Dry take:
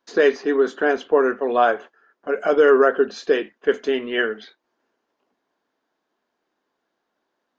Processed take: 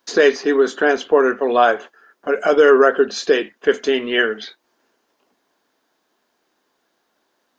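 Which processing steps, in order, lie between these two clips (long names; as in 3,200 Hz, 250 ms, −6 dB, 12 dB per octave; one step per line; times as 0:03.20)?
high-shelf EQ 4,000 Hz +10.5 dB
in parallel at −2.5 dB: downward compressor, threshold −28 dBFS, peak gain reduction 16.5 dB
on the sum: level +1.5 dB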